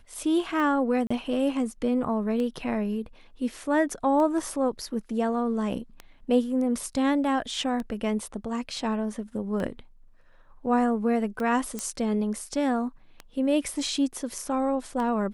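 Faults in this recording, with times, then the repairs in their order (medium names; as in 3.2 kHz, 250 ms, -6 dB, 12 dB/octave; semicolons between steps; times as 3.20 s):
tick 33 1/3 rpm -21 dBFS
1.07–1.10 s: dropout 35 ms
11.79 s: pop -16 dBFS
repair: de-click; interpolate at 1.07 s, 35 ms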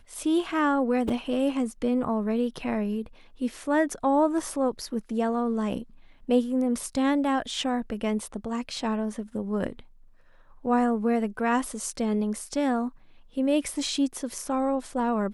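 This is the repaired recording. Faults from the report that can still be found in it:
nothing left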